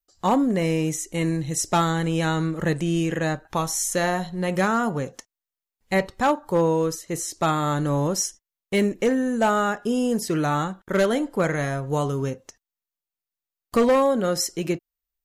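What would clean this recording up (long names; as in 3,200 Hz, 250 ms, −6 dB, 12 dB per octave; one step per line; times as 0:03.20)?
clipped peaks rebuilt −13.5 dBFS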